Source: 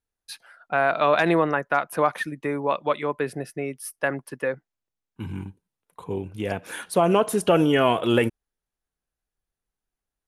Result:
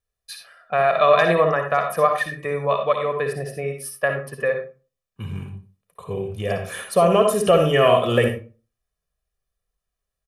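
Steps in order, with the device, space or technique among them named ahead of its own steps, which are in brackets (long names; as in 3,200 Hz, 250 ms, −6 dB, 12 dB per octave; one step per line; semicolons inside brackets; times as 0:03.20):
microphone above a desk (comb filter 1.7 ms, depth 73%; convolution reverb RT60 0.35 s, pre-delay 53 ms, DRR 4 dB)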